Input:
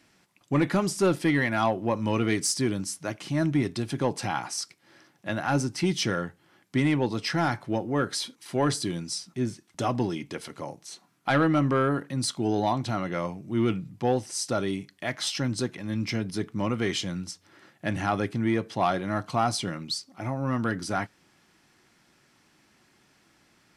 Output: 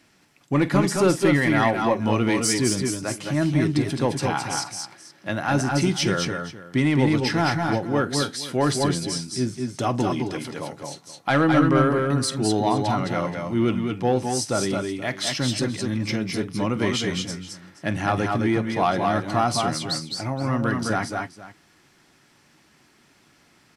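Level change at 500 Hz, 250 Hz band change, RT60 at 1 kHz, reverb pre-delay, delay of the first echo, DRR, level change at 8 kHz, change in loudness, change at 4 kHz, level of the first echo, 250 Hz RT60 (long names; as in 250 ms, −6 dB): +5.0 dB, +5.0 dB, no reverb audible, no reverb audible, 47 ms, no reverb audible, +4.5 dB, +4.5 dB, +4.5 dB, −18.0 dB, no reverb audible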